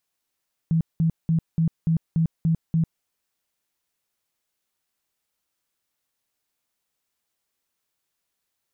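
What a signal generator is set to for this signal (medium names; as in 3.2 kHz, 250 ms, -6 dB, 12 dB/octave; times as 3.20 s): tone bursts 163 Hz, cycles 16, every 0.29 s, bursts 8, -17 dBFS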